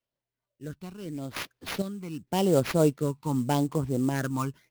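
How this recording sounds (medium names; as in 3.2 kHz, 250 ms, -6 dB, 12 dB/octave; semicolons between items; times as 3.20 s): random-step tremolo 2.2 Hz, depth 70%; phasing stages 12, 0.85 Hz, lowest notch 570–3100 Hz; aliases and images of a low sample rate 8.2 kHz, jitter 20%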